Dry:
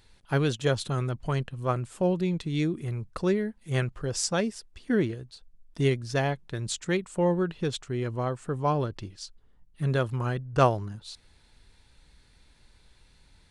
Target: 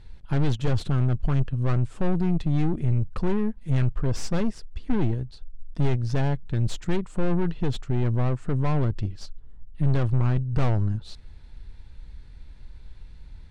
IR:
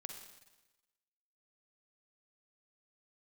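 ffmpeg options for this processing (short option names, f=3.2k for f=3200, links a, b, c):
-af "aeval=exprs='(tanh(35.5*val(0)+0.5)-tanh(0.5))/35.5':c=same,aemphasis=mode=reproduction:type=bsi,volume=4.5dB"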